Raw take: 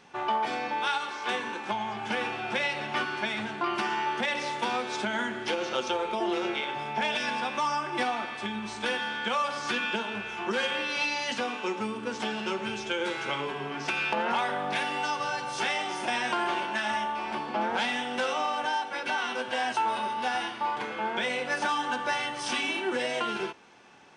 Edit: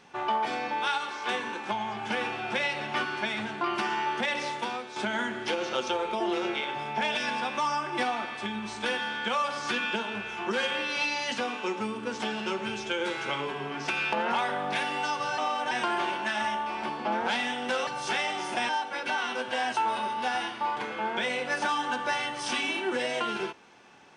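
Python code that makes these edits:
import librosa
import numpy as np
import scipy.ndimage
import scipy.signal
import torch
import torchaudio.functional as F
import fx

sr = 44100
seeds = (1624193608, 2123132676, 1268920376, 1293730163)

y = fx.edit(x, sr, fx.fade_out_to(start_s=4.45, length_s=0.51, floor_db=-11.0),
    fx.swap(start_s=15.38, length_s=0.82, other_s=18.36, other_length_s=0.33), tone=tone)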